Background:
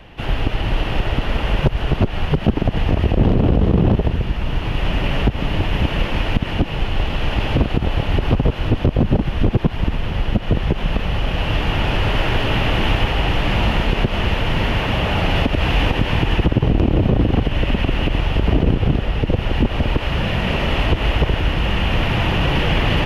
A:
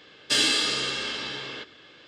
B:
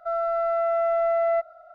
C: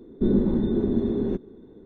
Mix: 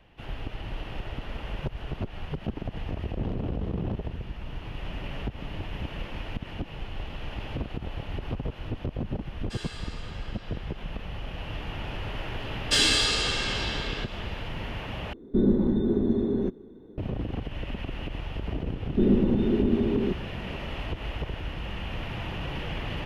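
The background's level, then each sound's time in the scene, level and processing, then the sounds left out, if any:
background -16 dB
9.2 add A -14 dB + rippled Chebyshev high-pass 330 Hz, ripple 9 dB
12.41 add A + feedback echo 0.195 s, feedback 42%, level -13.5 dB
15.13 replace with C -1 dB
18.76 add C -0.5 dB
not used: B

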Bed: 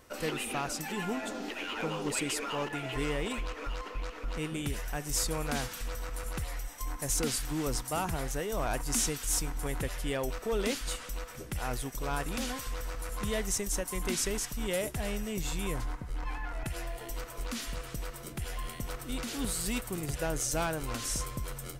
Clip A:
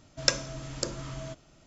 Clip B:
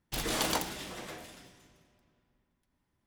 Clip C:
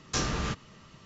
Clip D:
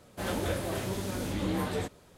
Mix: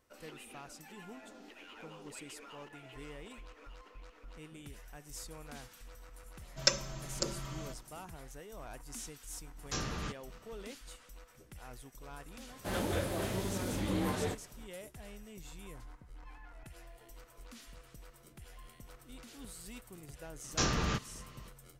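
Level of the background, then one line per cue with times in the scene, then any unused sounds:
bed -15.5 dB
6.39 add A -6 dB + comb 5.2 ms, depth 97%
9.58 add C -8 dB
12.47 add D -2.5 dB
20.44 add C -1.5 dB + downsampling 16000 Hz
not used: B

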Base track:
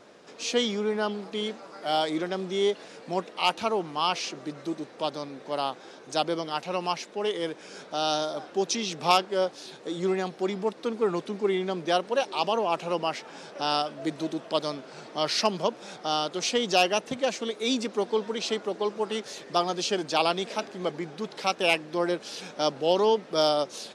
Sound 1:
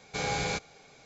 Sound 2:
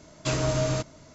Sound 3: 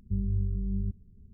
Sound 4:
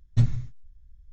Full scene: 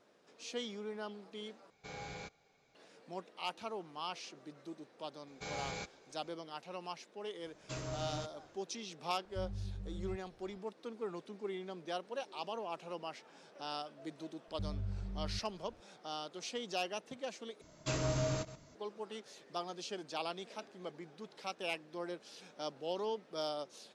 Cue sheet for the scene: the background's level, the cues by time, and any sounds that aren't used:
base track -15.5 dB
1.7 replace with 1 -15 dB + high shelf 5800 Hz -8 dB
5.27 add 1 -11.5 dB
7.44 add 2 -16 dB
9.25 add 3 -13.5 dB
14.48 add 3 -11 dB
17.61 replace with 2 -9 dB + reverse delay 0.105 s, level -13.5 dB
not used: 4

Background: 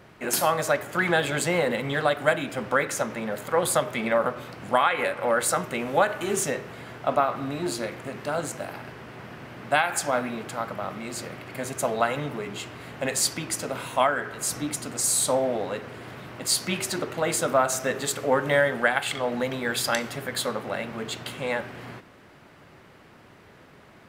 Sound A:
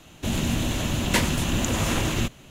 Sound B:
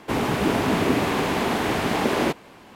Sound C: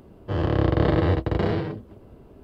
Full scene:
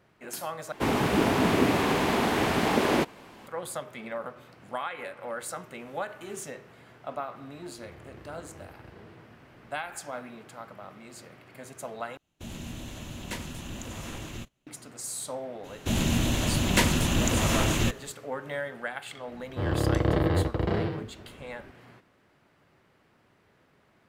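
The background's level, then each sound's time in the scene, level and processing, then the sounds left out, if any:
background -12.5 dB
0.72 replace with B -2 dB
7.53 add C -14.5 dB + compressor 2:1, threshold -43 dBFS
12.17 replace with A -14.5 dB + gate -37 dBFS, range -14 dB
15.63 add A -0.5 dB, fades 0.02 s
19.28 add C -4 dB

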